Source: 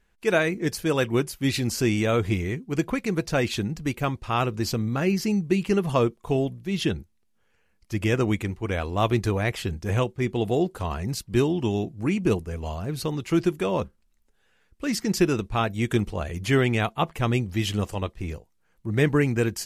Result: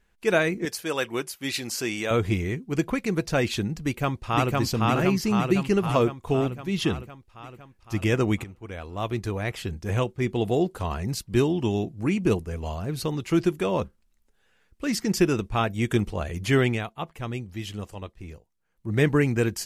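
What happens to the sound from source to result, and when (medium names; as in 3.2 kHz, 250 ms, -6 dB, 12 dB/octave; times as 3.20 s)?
0.65–2.11 s: high-pass 630 Hz 6 dB/octave
3.81–4.54 s: echo throw 510 ms, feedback 65%, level -0.5 dB
8.44–10.30 s: fade in linear, from -14 dB
15.08–16.06 s: band-stop 4 kHz, Q 13
16.67–18.92 s: dip -8.5 dB, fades 0.17 s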